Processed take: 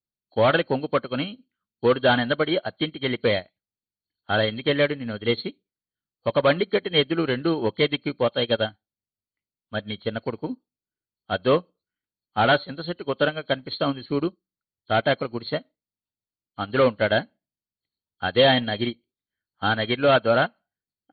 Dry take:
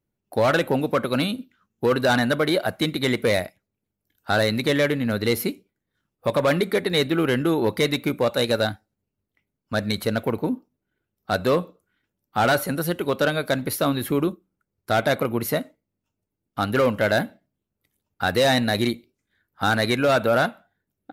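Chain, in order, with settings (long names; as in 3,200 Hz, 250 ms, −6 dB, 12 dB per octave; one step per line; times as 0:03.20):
hearing-aid frequency compression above 3,000 Hz 4 to 1
expander for the loud parts 2.5 to 1, over −31 dBFS
level +3 dB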